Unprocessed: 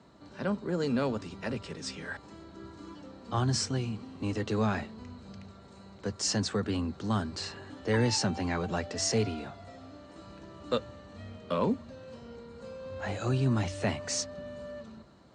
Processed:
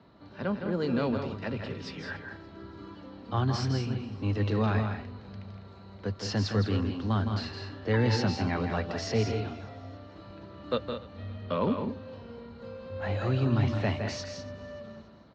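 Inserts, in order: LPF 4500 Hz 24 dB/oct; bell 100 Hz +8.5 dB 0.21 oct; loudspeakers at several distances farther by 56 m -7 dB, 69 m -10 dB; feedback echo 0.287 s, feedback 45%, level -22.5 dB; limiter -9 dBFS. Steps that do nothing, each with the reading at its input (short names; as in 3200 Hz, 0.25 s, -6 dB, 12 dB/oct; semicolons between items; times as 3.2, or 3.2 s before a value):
limiter -9 dBFS: input peak -14.5 dBFS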